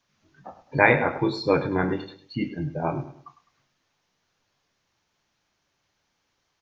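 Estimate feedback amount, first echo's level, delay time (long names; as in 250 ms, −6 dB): 35%, −13.5 dB, 103 ms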